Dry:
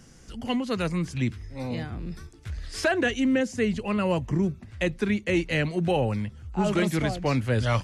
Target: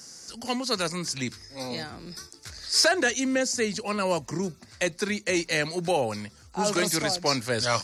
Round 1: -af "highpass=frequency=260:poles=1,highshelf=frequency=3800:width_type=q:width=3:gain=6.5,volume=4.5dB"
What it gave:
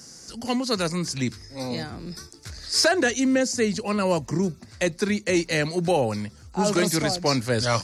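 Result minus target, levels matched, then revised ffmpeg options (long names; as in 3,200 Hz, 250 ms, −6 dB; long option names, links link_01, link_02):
250 Hz band +3.5 dB
-af "highpass=frequency=660:poles=1,highshelf=frequency=3800:width_type=q:width=3:gain=6.5,volume=4.5dB"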